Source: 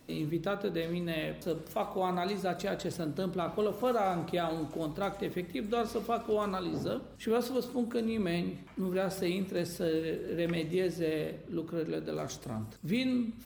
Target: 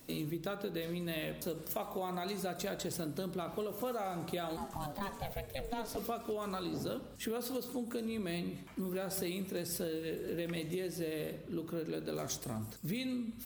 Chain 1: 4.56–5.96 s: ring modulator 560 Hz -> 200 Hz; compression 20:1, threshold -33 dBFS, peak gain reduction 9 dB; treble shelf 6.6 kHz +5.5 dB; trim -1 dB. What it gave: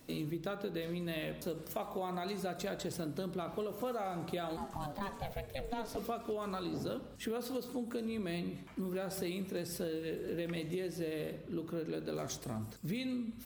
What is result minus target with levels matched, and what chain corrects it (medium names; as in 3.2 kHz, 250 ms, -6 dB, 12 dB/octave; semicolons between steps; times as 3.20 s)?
8 kHz band -4.0 dB
4.56–5.96 s: ring modulator 560 Hz -> 200 Hz; compression 20:1, threshold -33 dBFS, peak gain reduction 9 dB; treble shelf 6.6 kHz +13 dB; trim -1 dB